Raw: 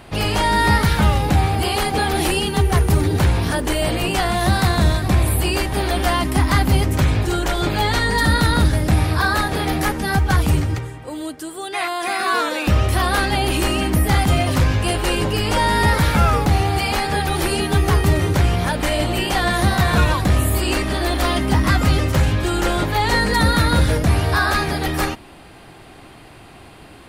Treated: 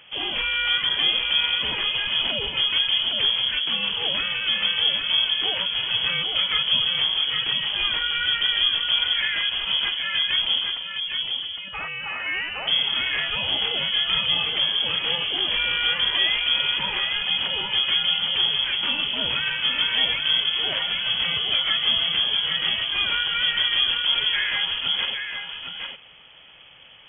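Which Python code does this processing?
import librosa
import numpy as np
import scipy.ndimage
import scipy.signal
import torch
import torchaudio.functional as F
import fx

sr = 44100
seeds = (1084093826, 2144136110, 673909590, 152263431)

y = x + 10.0 ** (-5.5 / 20.0) * np.pad(x, (int(811 * sr / 1000.0), 0))[:len(x)]
y = fx.freq_invert(y, sr, carrier_hz=3300)
y = F.gain(torch.from_numpy(y), -8.0).numpy()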